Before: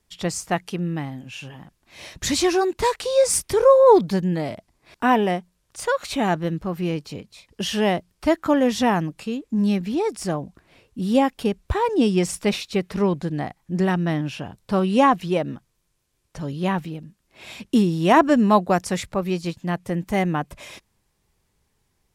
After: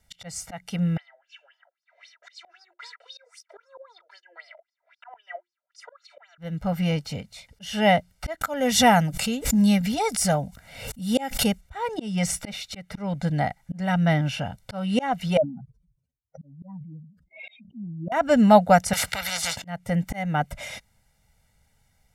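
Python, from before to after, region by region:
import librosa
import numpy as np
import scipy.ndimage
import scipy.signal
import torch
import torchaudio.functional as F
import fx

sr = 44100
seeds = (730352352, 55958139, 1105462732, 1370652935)

y = fx.chain(x, sr, fx.comb(ms=3.0, depth=0.88),
    fx.filter_lfo_bandpass(shape='sine', hz=3.8, low_hz=540.0, high_hz=5400.0, q=7.0),
    fx.cheby_ripple_highpass(hz=340.0, ripple_db=9), at=(0.97, 6.38))
y = fx.chain(y, sr, fx.high_shelf(hz=5400.0, db=10.0),
    fx.notch(hz=340.0, q=6.0),
    fx.pre_swell(db_per_s=87.0), at=(8.41, 11.61))
y = fx.chain(y, sr, fx.spec_expand(power=3.9),
    fx.highpass(hz=300.0, slope=12),
    fx.sustainer(db_per_s=94.0), at=(15.37, 18.12))
y = fx.chain(y, sr, fx.highpass(hz=140.0, slope=12),
    fx.high_shelf(hz=6200.0, db=-8.5),
    fx.spectral_comp(ratio=10.0), at=(18.93, 19.62))
y = fx.peak_eq(y, sr, hz=1900.0, db=8.0, octaves=0.2)
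y = y + 0.96 * np.pad(y, (int(1.4 * sr / 1000.0), 0))[:len(y)]
y = fx.auto_swell(y, sr, attack_ms=324.0)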